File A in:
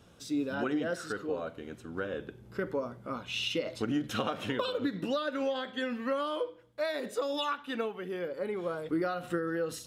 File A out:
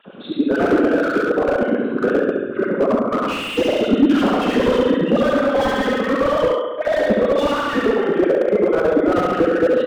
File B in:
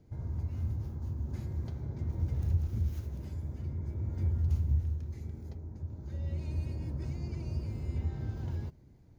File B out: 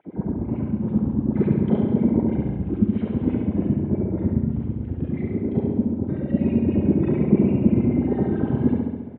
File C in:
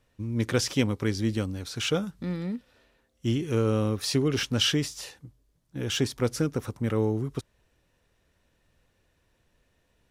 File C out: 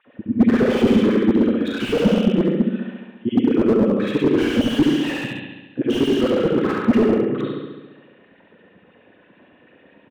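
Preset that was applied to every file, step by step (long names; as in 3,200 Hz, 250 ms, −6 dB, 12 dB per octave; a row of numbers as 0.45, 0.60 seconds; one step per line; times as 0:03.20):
spectral envelope exaggerated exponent 1.5
reverb reduction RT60 0.72 s
in parallel at +2.5 dB: compressor whose output falls as the input rises −41 dBFS, ratio −1
on the sum: high-frequency loss of the air 290 metres
four-comb reverb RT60 0.54 s, combs from 30 ms, DRR −5 dB
auto-filter high-pass sine 9.1 Hz 210–3,000 Hz
on a send: flutter between parallel walls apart 11.8 metres, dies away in 1.2 s
on the sum: downsampling to 8,000 Hz
slew-rate limiting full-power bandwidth 63 Hz
normalise the peak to −3 dBFS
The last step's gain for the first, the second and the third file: +6.5, +15.5, +3.0 decibels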